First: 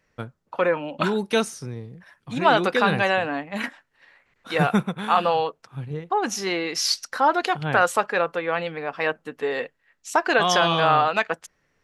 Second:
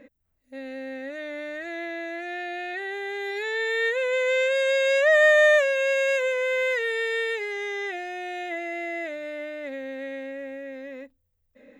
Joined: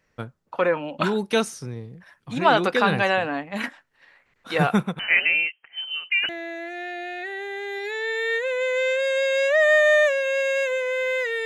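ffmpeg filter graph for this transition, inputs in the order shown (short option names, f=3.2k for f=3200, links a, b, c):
-filter_complex "[0:a]asettb=1/sr,asplit=3[a][b][c];[a]atrim=end=4.994[d];[b]atrim=start=4.99:end=6.29,asetpts=PTS-STARTPTS,afade=t=in:d=0.004:c=qsin,afade=t=out:st=1.296:d=0.004:c=qsin,lowpass=f=2.7k:t=q:w=0.5098,lowpass=f=2.7k:t=q:w=0.6013,lowpass=f=2.7k:t=q:w=0.9,lowpass=f=2.7k:t=q:w=2.563,afreqshift=-3200[e];[c]atrim=start=6.286[f];[d][e]acrossfade=d=0.004:c1=hsin:c2=qsin[g];[g][f]acrossfade=d=0.004:c1=qsin:c2=hsin,apad=whole_dur=11.45,atrim=end=11.45,atrim=end=6.292[h];[1:a]atrim=start=1.808:end=6.97[i];[h][i]acrossfade=d=0.004:c1=hsin:c2=hsin"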